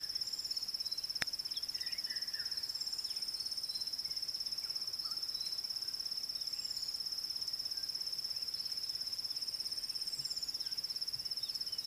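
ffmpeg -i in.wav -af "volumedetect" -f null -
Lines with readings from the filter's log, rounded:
mean_volume: -40.4 dB
max_volume: -10.9 dB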